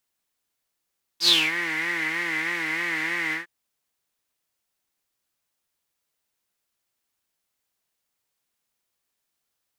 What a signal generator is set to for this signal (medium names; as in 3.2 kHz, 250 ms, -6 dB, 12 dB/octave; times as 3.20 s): synth patch with vibrato E4, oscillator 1 triangle, oscillator 2 level -14.5 dB, sub -8 dB, noise -9.5 dB, filter bandpass, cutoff 1.8 kHz, Q 10, filter envelope 1.5 oct, filter decay 0.30 s, filter sustain 10%, attack 80 ms, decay 0.23 s, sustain -11 dB, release 0.13 s, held 2.13 s, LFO 3.2 Hz, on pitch 91 cents